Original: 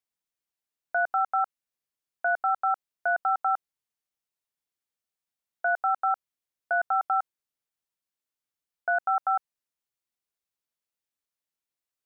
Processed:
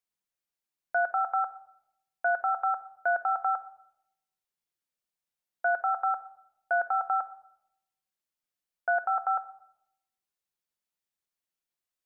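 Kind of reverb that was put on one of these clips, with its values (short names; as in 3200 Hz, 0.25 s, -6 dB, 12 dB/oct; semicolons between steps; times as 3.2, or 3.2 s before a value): shoebox room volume 2100 m³, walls furnished, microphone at 0.93 m; gain -1.5 dB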